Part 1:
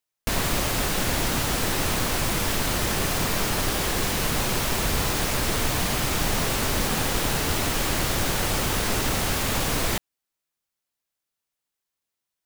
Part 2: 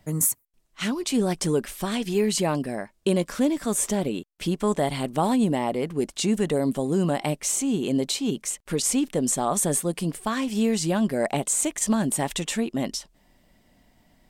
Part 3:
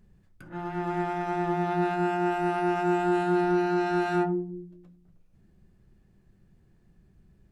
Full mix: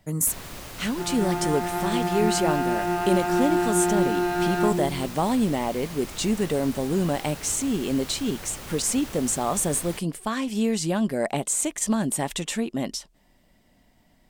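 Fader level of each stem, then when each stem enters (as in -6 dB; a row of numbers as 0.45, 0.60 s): -14.5, -1.0, +1.5 dB; 0.00, 0.00, 0.45 s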